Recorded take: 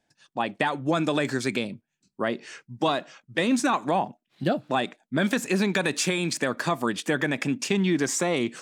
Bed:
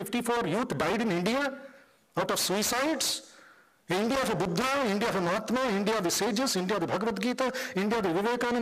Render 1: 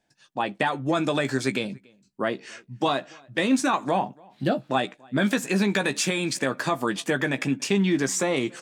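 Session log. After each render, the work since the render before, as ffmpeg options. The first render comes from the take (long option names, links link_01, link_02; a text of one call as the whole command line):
ffmpeg -i in.wav -filter_complex "[0:a]asplit=2[link_01][link_02];[link_02]adelay=15,volume=-8.5dB[link_03];[link_01][link_03]amix=inputs=2:normalize=0,asplit=2[link_04][link_05];[link_05]adelay=285.7,volume=-27dB,highshelf=frequency=4000:gain=-6.43[link_06];[link_04][link_06]amix=inputs=2:normalize=0" out.wav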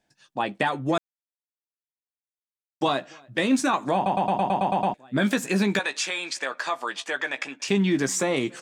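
ffmpeg -i in.wav -filter_complex "[0:a]asettb=1/sr,asplit=3[link_01][link_02][link_03];[link_01]atrim=end=5.794[link_04];[link_02]atrim=start=5.79:end=7.68,asetpts=PTS-STARTPTS,afade=type=in:duration=0.004:curve=qsin,afade=type=out:start_time=1.886:duration=0.004:curve=qsin,highpass=700,lowpass=6800[link_05];[link_03]atrim=start=7.676[link_06];[link_04][link_05]acrossfade=duration=0.004:curve1=hsin:curve2=qsin[link_07];[link_07][link_06]acrossfade=duration=0.004:curve1=qsin:curve2=hsin,asplit=12[link_08][link_09][link_10][link_11][link_12][link_13][link_14][link_15][link_16][link_17][link_18][link_19];[link_08]atrim=end=0.98,asetpts=PTS-STARTPTS,afade=type=out:start_time=0.976:duration=0.004:curve=hsin[link_20];[link_09]atrim=start=0.98:end=2.81,asetpts=PTS-STARTPTS,volume=0[link_21];[link_10]atrim=start=2.81:end=4.062,asetpts=PTS-STARTPTS,afade=type=in:duration=0.004:curve=hsin[link_22];[link_11]atrim=start=3.948:end=4.062[link_23];[link_12]atrim=start=3.948:end=4.062[link_24];[link_13]atrim=start=3.948:end=4.062[link_25];[link_14]atrim=start=3.948:end=4.062[link_26];[link_15]atrim=start=3.948:end=4.062[link_27];[link_16]atrim=start=3.948:end=4.062[link_28];[link_17]atrim=start=3.948:end=4.062[link_29];[link_18]atrim=start=3.948:end=4.062[link_30];[link_19]atrim=start=4.938[link_31];[link_20][link_21][link_22]concat=n=3:v=0:a=1[link_32];[link_32][link_23]acrossfade=duration=0.004:curve1=hsin:curve2=hsin[link_33];[link_33][link_24]acrossfade=duration=0.004:curve1=hsin:curve2=hsin[link_34];[link_34][link_25]acrossfade=duration=0.004:curve1=hsin:curve2=hsin[link_35];[link_35][link_26]acrossfade=duration=0.004:curve1=hsin:curve2=hsin[link_36];[link_36][link_27]acrossfade=duration=0.004:curve1=hsin:curve2=hsin[link_37];[link_37][link_28]acrossfade=duration=0.004:curve1=hsin:curve2=hsin[link_38];[link_38][link_29]acrossfade=duration=0.004:curve1=hsin:curve2=hsin[link_39];[link_39][link_30]acrossfade=duration=0.004:curve1=hsin:curve2=hsin[link_40];[link_40][link_31]acrossfade=duration=0.004:curve1=hsin:curve2=hsin" out.wav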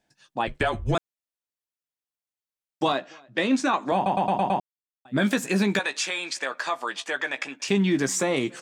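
ffmpeg -i in.wav -filter_complex "[0:a]asettb=1/sr,asplit=3[link_01][link_02][link_03];[link_01]atrim=end=0.474[link_04];[link_02]atrim=start=0.47:end=0.95,asetpts=PTS-STARTPTS,afade=type=in:duration=0.004:curve=qsin,afade=type=out:start_time=0.476:duration=0.004:curve=qsin,afreqshift=-180[link_05];[link_03]atrim=start=0.946[link_06];[link_04][link_05]acrossfade=duration=0.004:curve1=hsin:curve2=qsin[link_07];[link_07][link_06]acrossfade=duration=0.004:curve1=qsin:curve2=hsin,asettb=1/sr,asplit=3[link_08][link_09][link_10];[link_08]atrim=end=2.924[link_11];[link_09]atrim=start=2.92:end=3.92,asetpts=PTS-STARTPTS,afade=type=in:duration=0.004:curve=qsin,afade=type=out:start_time=0.996:duration=0.004:curve=qsin,highpass=190,lowpass=6100[link_12];[link_10]atrim=start=3.916[link_13];[link_11][link_12]acrossfade=duration=0.004:curve1=hsin:curve2=qsin[link_14];[link_14][link_13]acrossfade=duration=0.004:curve1=qsin:curve2=hsin,asplit=3[link_15][link_16][link_17];[link_15]atrim=end=4.6,asetpts=PTS-STARTPTS,afade=type=out:start_time=4.596:duration=0.004:curve=hsin[link_18];[link_16]atrim=start=4.6:end=5.05,asetpts=PTS-STARTPTS,volume=0[link_19];[link_17]atrim=start=5.05,asetpts=PTS-STARTPTS,afade=type=in:duration=0.004:curve=hsin[link_20];[link_18][link_19][link_20]concat=n=3:v=0:a=1" out.wav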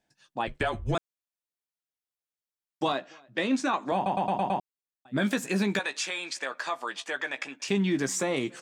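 ffmpeg -i in.wav -af "volume=-4dB" out.wav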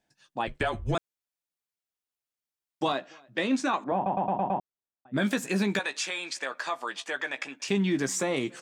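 ffmpeg -i in.wav -filter_complex "[0:a]asettb=1/sr,asplit=3[link_01][link_02][link_03];[link_01]atrim=end=3.844[link_04];[link_02]atrim=start=3.84:end=5.14,asetpts=PTS-STARTPTS,afade=type=in:duration=0.004:curve=qsin,afade=type=out:start_time=1.296:duration=0.004:curve=qsin,lowpass=1500[link_05];[link_03]atrim=start=5.136[link_06];[link_04][link_05]acrossfade=duration=0.004:curve1=hsin:curve2=qsin[link_07];[link_07][link_06]acrossfade=duration=0.004:curve1=qsin:curve2=hsin" out.wav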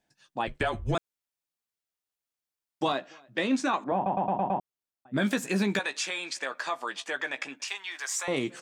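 ffmpeg -i in.wav -filter_complex "[0:a]asettb=1/sr,asplit=3[link_01][link_02][link_03];[link_01]atrim=end=7.644[link_04];[link_02]atrim=start=7.64:end=8.28,asetpts=PTS-STARTPTS,afade=type=in:duration=0.004:curve=qsin,afade=type=out:start_time=0.636:duration=0.004:curve=qsin,highpass=frequency=840:width=0.5412,highpass=frequency=840:width=1.3066[link_05];[link_03]atrim=start=8.276[link_06];[link_04][link_05]acrossfade=duration=0.004:curve1=hsin:curve2=qsin[link_07];[link_07][link_06]acrossfade=duration=0.004:curve1=qsin:curve2=hsin" out.wav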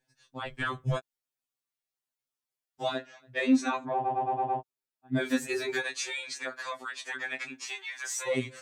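ffmpeg -i in.wav -af "afftfilt=real='re*2.45*eq(mod(b,6),0)':imag='im*2.45*eq(mod(b,6),0)':win_size=2048:overlap=0.75" out.wav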